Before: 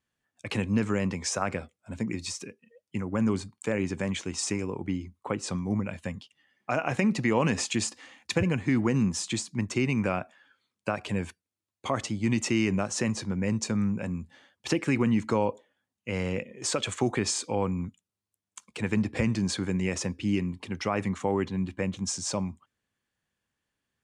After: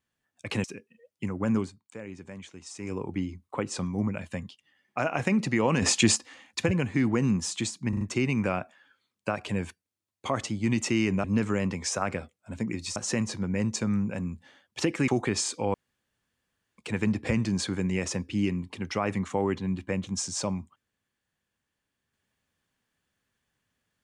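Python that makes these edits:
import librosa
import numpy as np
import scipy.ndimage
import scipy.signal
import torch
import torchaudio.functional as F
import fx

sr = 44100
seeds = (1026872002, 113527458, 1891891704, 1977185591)

y = fx.edit(x, sr, fx.move(start_s=0.64, length_s=1.72, to_s=12.84),
    fx.fade_down_up(start_s=3.29, length_s=1.37, db=-12.5, fade_s=0.15),
    fx.clip_gain(start_s=7.54, length_s=0.34, db=7.0),
    fx.stutter(start_s=9.61, slice_s=0.04, count=4),
    fx.cut(start_s=14.96, length_s=2.02),
    fx.room_tone_fill(start_s=17.64, length_s=1.04), tone=tone)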